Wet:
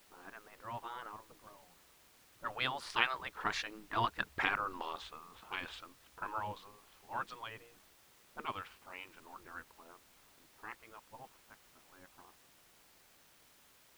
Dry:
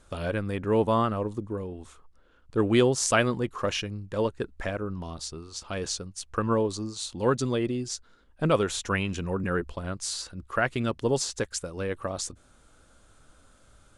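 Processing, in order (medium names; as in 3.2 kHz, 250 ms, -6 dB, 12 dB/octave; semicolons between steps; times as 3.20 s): Doppler pass-by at 4.50 s, 18 m/s, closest 11 m; spectral gate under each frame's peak -10 dB weak; high-order bell 1.9 kHz +8.5 dB 2.8 oct; level-controlled noise filter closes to 590 Hz, open at -34 dBFS; in parallel at -9 dB: word length cut 8-bit, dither triangular; on the sum: treble shelf 3.9 kHz -8 dB; trim -2.5 dB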